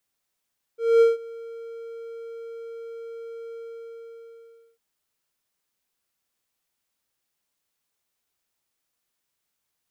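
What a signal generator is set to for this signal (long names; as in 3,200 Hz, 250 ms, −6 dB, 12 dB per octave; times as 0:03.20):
note with an ADSR envelope triangle 460 Hz, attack 230 ms, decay 161 ms, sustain −23.5 dB, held 2.76 s, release 1,240 ms −9.5 dBFS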